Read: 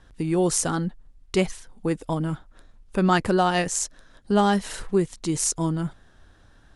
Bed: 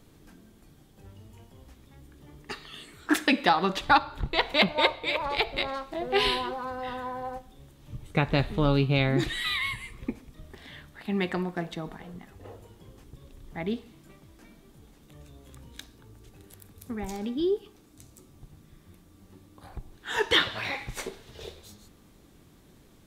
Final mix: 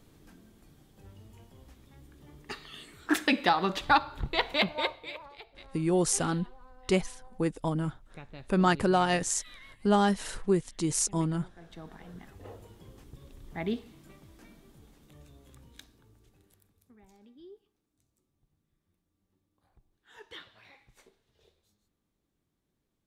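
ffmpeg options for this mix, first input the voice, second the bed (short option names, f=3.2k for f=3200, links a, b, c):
-filter_complex "[0:a]adelay=5550,volume=-4dB[a];[1:a]volume=19dB,afade=t=out:st=4.38:d=0.95:silence=0.1,afade=t=in:st=11.58:d=0.78:silence=0.0841395,afade=t=out:st=14.36:d=2.57:silence=0.0668344[b];[a][b]amix=inputs=2:normalize=0"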